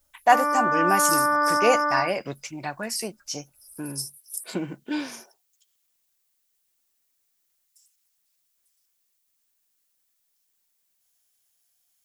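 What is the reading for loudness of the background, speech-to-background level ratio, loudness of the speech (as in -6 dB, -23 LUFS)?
-23.0 LUFS, -3.5 dB, -26.5 LUFS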